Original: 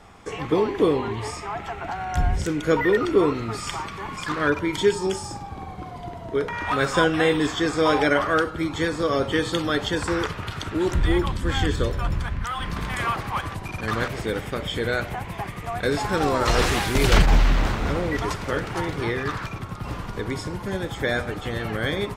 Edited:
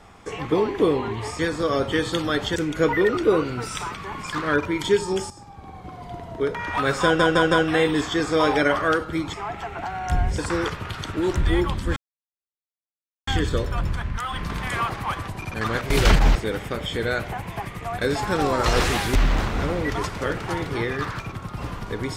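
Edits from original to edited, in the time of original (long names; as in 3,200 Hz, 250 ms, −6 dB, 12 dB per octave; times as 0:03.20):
0:01.39–0:02.44: swap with 0:08.79–0:09.96
0:03.11–0:03.88: play speed 108%
0:05.24–0:06.11: fade in, from −13 dB
0:06.97: stutter 0.16 s, 4 plays
0:11.54: splice in silence 1.31 s
0:16.97–0:17.42: move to 0:14.17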